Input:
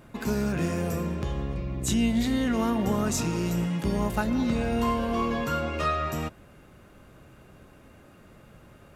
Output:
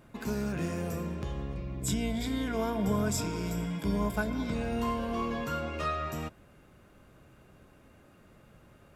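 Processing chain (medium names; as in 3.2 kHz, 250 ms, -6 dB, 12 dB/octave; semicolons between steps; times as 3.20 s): 1.82–4.54 s: rippled EQ curve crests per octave 1.7, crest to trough 11 dB; trim -5.5 dB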